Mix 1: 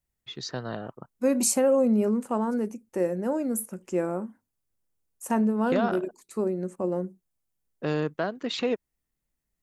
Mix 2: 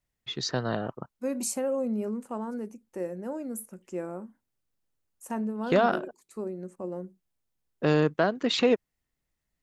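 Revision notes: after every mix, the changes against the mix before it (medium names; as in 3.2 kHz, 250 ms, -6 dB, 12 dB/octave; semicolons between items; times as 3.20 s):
first voice +4.5 dB; second voice -7.5 dB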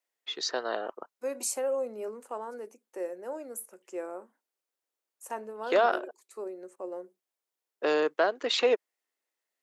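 master: add high-pass 380 Hz 24 dB/octave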